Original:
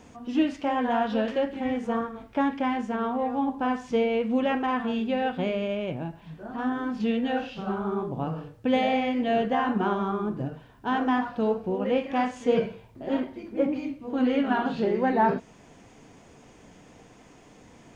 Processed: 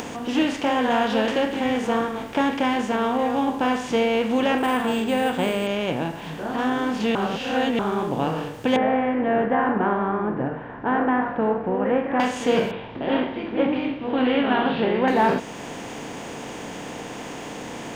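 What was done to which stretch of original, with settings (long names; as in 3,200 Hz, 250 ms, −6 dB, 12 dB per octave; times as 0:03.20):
0:04.58–0:05.67: linearly interpolated sample-rate reduction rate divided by 4×
0:07.15–0:07.79: reverse
0:08.76–0:12.20: Chebyshev low-pass filter 1,800 Hz, order 4
0:12.71–0:15.08: Butterworth low-pass 3,600 Hz 48 dB per octave
whole clip: compressor on every frequency bin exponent 0.6; high-shelf EQ 2,900 Hz +11 dB; upward compression, threshold −30 dBFS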